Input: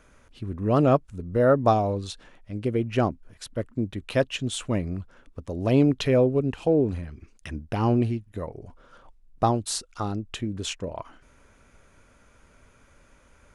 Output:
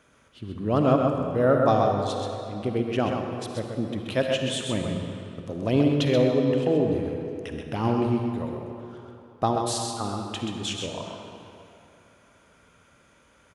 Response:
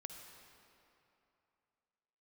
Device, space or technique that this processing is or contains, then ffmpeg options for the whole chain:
PA in a hall: -filter_complex "[0:a]highpass=100,equalizer=f=3.3k:t=o:w=0.34:g=5,aecho=1:1:130:0.531[a];[1:a]atrim=start_sample=2205[b];[a][b]afir=irnorm=-1:irlink=0,volume=3.5dB"

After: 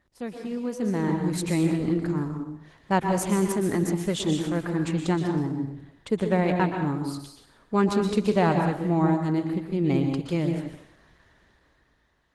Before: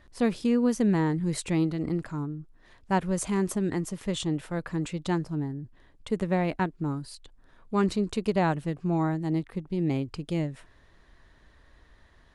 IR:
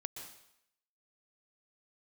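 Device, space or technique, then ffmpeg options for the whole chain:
far-field microphone of a smart speaker: -filter_complex "[1:a]atrim=start_sample=2205[a];[0:a][a]afir=irnorm=-1:irlink=0,highpass=f=94:p=1,dynaudnorm=f=200:g=11:m=12.5dB,volume=-5dB" -ar 48000 -c:a libopus -b:a 16k

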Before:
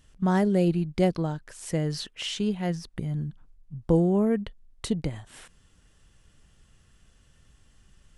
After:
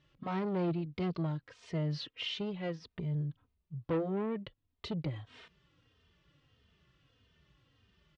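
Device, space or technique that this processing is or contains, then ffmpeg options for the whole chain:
barber-pole flanger into a guitar amplifier: -filter_complex "[0:a]asplit=2[a][b];[b]adelay=3,afreqshift=-1.6[c];[a][c]amix=inputs=2:normalize=1,asoftclip=type=tanh:threshold=-26.5dB,highpass=96,equalizer=f=210:t=q:w=4:g=-7,equalizer=f=770:t=q:w=4:g=-6,equalizer=f=1.6k:t=q:w=4:g=-5,lowpass=f=4.2k:w=0.5412,lowpass=f=4.2k:w=1.3066"

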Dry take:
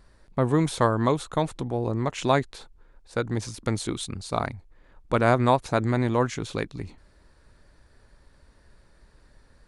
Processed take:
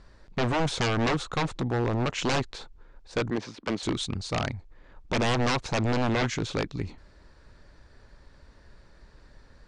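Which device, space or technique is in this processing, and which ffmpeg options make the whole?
synthesiser wavefolder: -filter_complex "[0:a]asettb=1/sr,asplit=3[a][b][c];[a]atrim=end=3.304[d];[b]atrim=start=3.3:end=3.83,asetpts=PTS-STARTPTS,afade=t=in:d=0.004:c=qsin,afade=t=out:st=0.526:d=0.004:c=qsin,acrossover=split=180 3900:gain=0.0708 1 0.141[e][f][g];[e][f][g]amix=inputs=3:normalize=0[h];[c]atrim=start=3.826[i];[d][h]acrossfade=d=0.004:c1=hsin:c2=qsin[j];[j][i]acrossfade=d=0.004:c1=qsin:c2=hsin,aeval=exprs='0.075*(abs(mod(val(0)/0.075+3,4)-2)-1)':c=same,lowpass=f=7k:w=0.5412,lowpass=f=7k:w=1.3066,volume=3dB"

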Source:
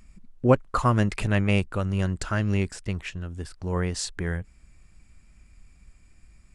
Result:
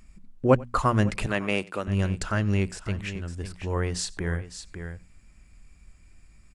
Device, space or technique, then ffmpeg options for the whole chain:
ducked delay: -filter_complex "[0:a]asplit=3[a][b][c];[b]adelay=555,volume=-8dB[d];[c]apad=whole_len=312962[e];[d][e]sidechaincompress=threshold=-32dB:ratio=4:attack=21:release=446[f];[a][f]amix=inputs=2:normalize=0,asettb=1/sr,asplit=3[g][h][i];[g]atrim=end=1.264[j];[h]atrim=start=1.26:end=1.88,asetpts=PTS-STARTPTS,afade=t=in:d=0.004:c=qsin,afade=t=out:st=0.616:d=0.004:c=qsin,highpass=260[k];[i]atrim=start=1.876[l];[j][k]acrossfade=d=0.004:c1=hsin:c2=qsin[m];[m][l]acrossfade=d=0.004:c1=qsin:c2=hsin,bandreject=f=60:t=h:w=6,bandreject=f=120:t=h:w=6,bandreject=f=180:t=h:w=6,bandreject=f=240:t=h:w=6,aecho=1:1:92:0.0668"

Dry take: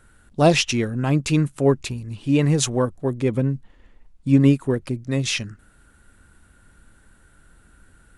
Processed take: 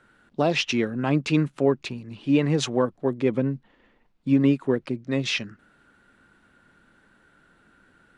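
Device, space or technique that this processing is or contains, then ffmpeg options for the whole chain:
DJ mixer with the lows and highs turned down: -filter_complex "[0:a]acrossover=split=150 5100:gain=0.112 1 0.1[a][b][c];[a][b][c]amix=inputs=3:normalize=0,alimiter=limit=-10dB:level=0:latency=1:release=210"

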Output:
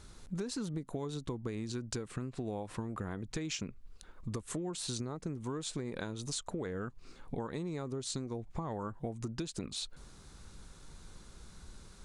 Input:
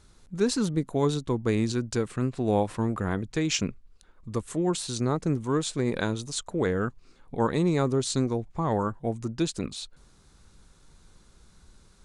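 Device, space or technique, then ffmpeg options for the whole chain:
serial compression, peaks first: -af "acompressor=threshold=-32dB:ratio=6,acompressor=threshold=-40dB:ratio=3,volume=3.5dB"

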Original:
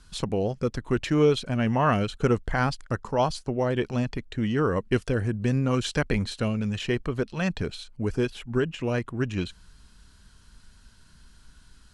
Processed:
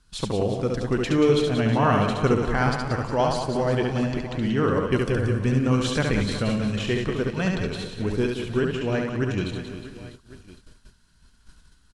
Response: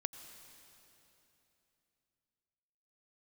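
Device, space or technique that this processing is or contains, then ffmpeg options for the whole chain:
keyed gated reverb: -filter_complex "[0:a]asettb=1/sr,asplit=3[a][b][c];[a]atrim=end=8.724[d];[b]atrim=start=8.72:end=9.14,asetpts=PTS-STARTPTS,afade=t=in:d=0.004:c=qsin,afade=t=out:st=0.416:d=0.004:c=qsin,lowpass=7.2k[e];[c]atrim=start=9.136[f];[d][e]acrossfade=d=0.004:c1=hsin:c2=qsin[g];[g][f]acrossfade=d=0.004:c1=qsin:c2=hsin,aecho=1:1:70|182|361.2|647.9|1107:0.631|0.398|0.251|0.158|0.1,asplit=3[h][i][j];[1:a]atrim=start_sample=2205[k];[i][k]afir=irnorm=-1:irlink=0[l];[j]apad=whole_len=574993[m];[l][m]sidechaingate=range=-33dB:threshold=-46dB:ratio=16:detection=peak,volume=6.5dB[n];[h][n]amix=inputs=2:normalize=0,volume=-8.5dB"

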